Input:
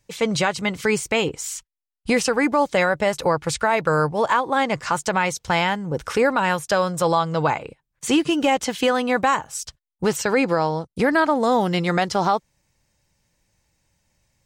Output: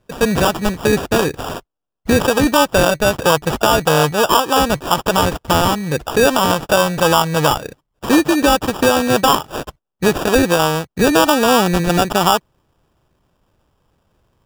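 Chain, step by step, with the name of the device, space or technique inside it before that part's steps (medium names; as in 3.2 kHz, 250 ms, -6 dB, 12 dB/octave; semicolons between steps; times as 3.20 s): crushed at another speed (playback speed 0.5×; sample-and-hold 42×; playback speed 2×); trim +6 dB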